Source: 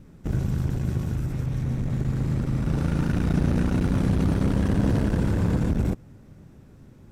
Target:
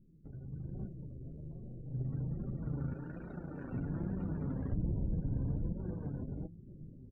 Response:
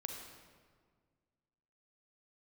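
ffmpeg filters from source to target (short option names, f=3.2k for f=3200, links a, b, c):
-filter_complex "[0:a]asettb=1/sr,asplit=3[a][b][c];[a]atrim=end=4.724[d];[b]atrim=start=4.72:end=5.2,asetpts=PTS-STARTPTS,afade=t=in:d=0.004:c=qsin,afade=t=out:st=0.476:d=0.004:c=qsin,aemphasis=mode=reproduction:type=riaa[e];[c]atrim=start=5.196[f];[d][e]acrossfade=d=0.004:c1=hsin:c2=qsin[g];[g][f]acrossfade=d=0.004:c1=qsin:c2=hsin,aecho=1:1:524:0.631,flanger=delay=8.3:depth=9:regen=-86:speed=0.51:shape=sinusoidal,acompressor=threshold=-43dB:ratio=2.5,asettb=1/sr,asplit=3[h][i][j];[h]atrim=end=0.874[k];[i]atrim=start=0.87:end=1.94,asetpts=PTS-STARTPTS,afade=t=in:d=0.004:c=qsin,afade=t=out:st=1.066:d=0.004:c=qsin,aeval=exprs='(tanh(178*val(0)+0.35)-tanh(0.35))/178':c=same[l];[j]atrim=start=1.936[m];[k][l]acrossfade=d=0.004:c1=hsin:c2=qsin[n];[n][m]acrossfade=d=0.004:c1=qsin:c2=hsin,asettb=1/sr,asplit=3[o][p][q];[o]atrim=end=2.944[r];[p]atrim=start=2.94:end=3.73,asetpts=PTS-STARTPTS,afade=t=in:d=0.004:c=qsin,afade=t=out:st=0.786:d=0.004:c=qsin,bass=f=250:g=-10,treble=f=4k:g=2[s];[q]atrim=start=3.726[t];[r][s]acrossfade=d=0.004:c1=hsin:c2=qsin[u];[u][t]acrossfade=d=0.004:c1=qsin:c2=hsin,afftdn=nr=32:nf=-53,flanger=delay=5.1:depth=2.7:regen=43:speed=1.2:shape=triangular,dynaudnorm=f=110:g=11:m=12dB,volume=-6dB"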